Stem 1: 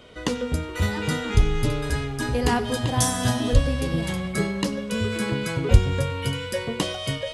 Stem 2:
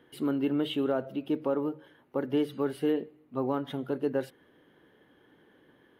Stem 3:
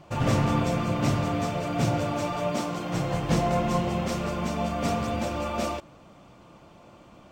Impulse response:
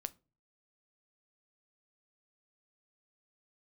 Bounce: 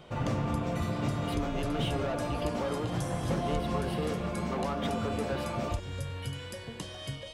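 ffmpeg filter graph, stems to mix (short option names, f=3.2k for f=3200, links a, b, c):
-filter_complex "[0:a]acrossover=split=140|3000[a][b][c];[a]acompressor=threshold=-24dB:ratio=4[d];[b]acompressor=threshold=-37dB:ratio=4[e];[c]acompressor=threshold=-39dB:ratio=4[f];[d][e][f]amix=inputs=3:normalize=0,volume=-6.5dB[g];[1:a]highpass=310,asplit=2[h][i];[i]highpass=f=720:p=1,volume=22dB,asoftclip=type=tanh:threshold=-18.5dB[j];[h][j]amix=inputs=2:normalize=0,lowpass=f=4.7k:p=1,volume=-6dB,adelay=1150,volume=-7dB[k];[2:a]highshelf=f=3.5k:g=-11,volume=-4dB[l];[g][k][l]amix=inputs=3:normalize=0,acompressor=threshold=-29dB:ratio=2"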